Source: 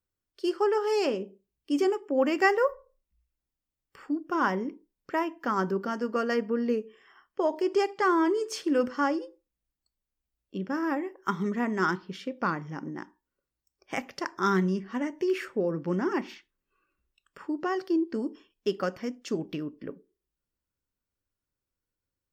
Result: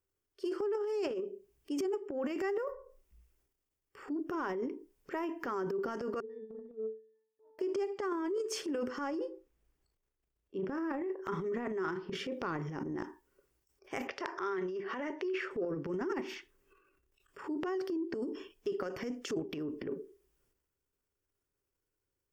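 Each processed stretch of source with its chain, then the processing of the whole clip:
6.20–7.59 s: pitch-class resonator A, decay 0.66 s + upward expansion 2.5:1, over -52 dBFS
9.19–12.27 s: treble shelf 4.3 kHz -9 dB + doubling 37 ms -12 dB
14.07–15.51 s: low-pass 7.1 kHz + three-band isolator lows -14 dB, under 390 Hz, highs -17 dB, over 5.3 kHz
whole clip: graphic EQ with 31 bands 200 Hz -8 dB, 400 Hz +11 dB, 4 kHz -7 dB; transient shaper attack -7 dB, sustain +11 dB; compression 6:1, threshold -34 dBFS

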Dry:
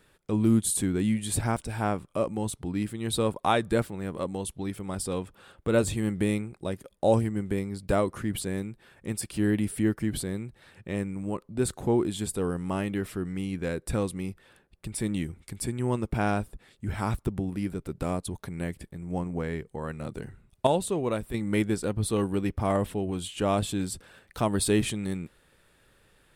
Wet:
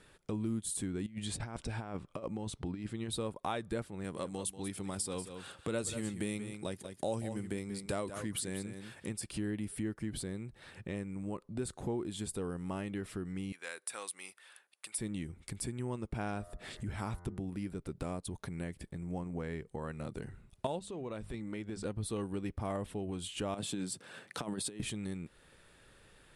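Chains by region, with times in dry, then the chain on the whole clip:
1.06–3.10 s: low-pass 6.3 kHz + compressor with a negative ratio -31 dBFS, ratio -0.5
4.04–9.09 s: high-pass 82 Hz + treble shelf 3.1 kHz +9 dB + delay 187 ms -12.5 dB
13.52–14.98 s: high-pass 1.1 kHz + peaking EQ 9.8 kHz +7 dB 0.53 oct
16.31–17.40 s: de-hum 87.46 Hz, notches 24 + upward compressor, threshold -33 dBFS
20.79–21.85 s: low-pass 7.2 kHz + hum notches 50/100/150/200 Hz + compression 3:1, threshold -35 dBFS
23.54–24.80 s: high-pass 130 Hz 24 dB/octave + compressor with a negative ratio -29 dBFS, ratio -0.5
whole clip: elliptic low-pass 11 kHz, stop band 50 dB; compression 2.5:1, threshold -42 dBFS; trim +2 dB

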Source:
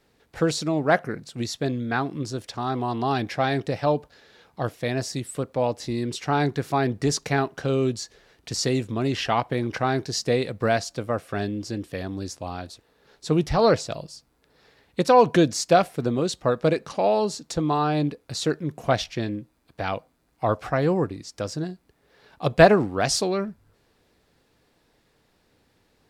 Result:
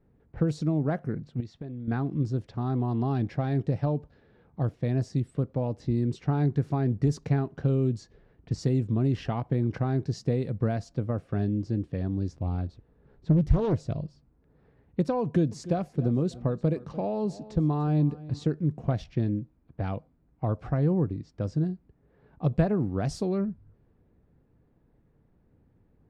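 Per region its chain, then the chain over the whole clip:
1.40–1.88 s: compression 8:1, threshold -31 dBFS + bass shelf 330 Hz -6 dB
12.32–14.03 s: bass shelf 92 Hz +8.5 dB + loudspeaker Doppler distortion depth 0.69 ms
15.22–18.45 s: band-stop 1.4 kHz, Q 20 + feedback delay 295 ms, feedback 30%, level -21 dB
whole clip: compression 2.5:1, threshold -23 dBFS; level-controlled noise filter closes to 2 kHz, open at -22 dBFS; FFT filter 150 Hz 0 dB, 630 Hz -13 dB, 3.8 kHz -22 dB; trim +6 dB

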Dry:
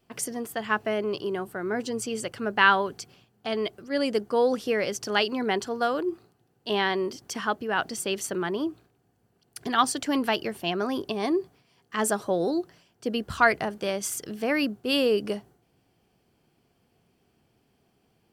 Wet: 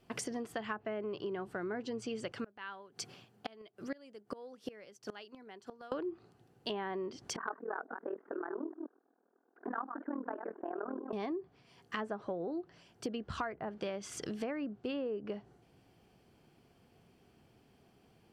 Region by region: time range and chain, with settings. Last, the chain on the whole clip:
2.32–5.92 s: high-pass 92 Hz 24 dB/octave + bass shelf 210 Hz -3.5 dB + inverted gate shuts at -22 dBFS, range -28 dB
7.36–11.13 s: chunks repeated in reverse 125 ms, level -9 dB + Chebyshev band-pass 260–1600 Hz, order 4 + AM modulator 40 Hz, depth 85%
whole clip: low-pass that closes with the level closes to 1.4 kHz, closed at -21 dBFS; treble shelf 5.4 kHz -5 dB; compression 6:1, threshold -39 dBFS; trim +2.5 dB

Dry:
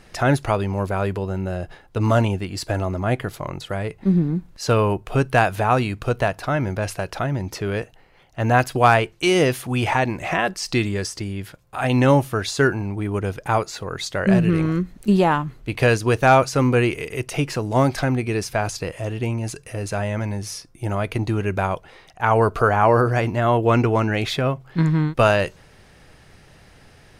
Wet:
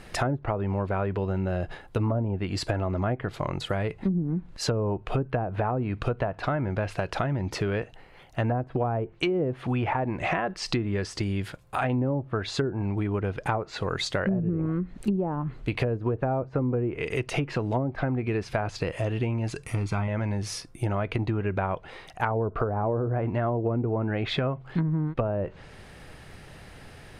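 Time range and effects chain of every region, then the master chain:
19.66–20.08 s: companding laws mixed up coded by A + comb 0.9 ms, depth 72%
whole clip: low-pass that closes with the level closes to 560 Hz, closed at -13.5 dBFS; peaking EQ 5.8 kHz -5 dB 0.64 oct; compression 6:1, threshold -27 dBFS; trim +3 dB

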